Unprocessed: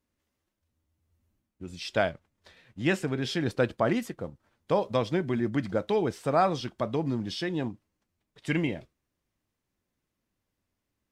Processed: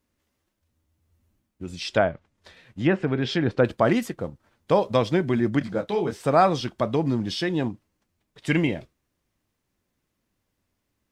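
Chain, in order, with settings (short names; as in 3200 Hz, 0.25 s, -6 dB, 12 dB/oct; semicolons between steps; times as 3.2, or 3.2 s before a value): 1.72–3.65 treble ducked by the level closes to 1500 Hz, closed at -22 dBFS; 5.59–6.2 detuned doubles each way 46 cents; gain +5.5 dB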